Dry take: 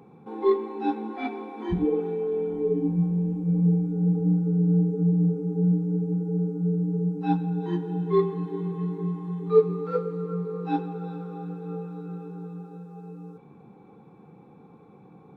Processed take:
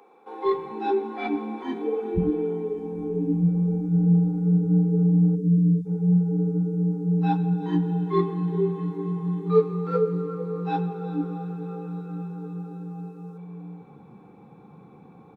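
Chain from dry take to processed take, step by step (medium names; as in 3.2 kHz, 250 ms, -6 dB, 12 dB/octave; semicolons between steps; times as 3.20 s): spectral selection erased 5.36–5.86 s, 220–3400 Hz; bands offset in time highs, lows 450 ms, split 390 Hz; trim +3 dB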